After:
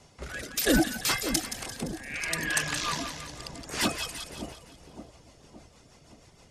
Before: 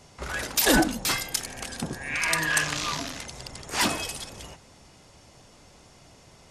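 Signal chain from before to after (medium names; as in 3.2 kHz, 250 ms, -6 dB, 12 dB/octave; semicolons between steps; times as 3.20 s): reverb removal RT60 0.7 s; rotary cabinet horn 0.6 Hz, later 6.3 Hz, at 2.95 s; two-band feedback delay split 840 Hz, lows 568 ms, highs 172 ms, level -9 dB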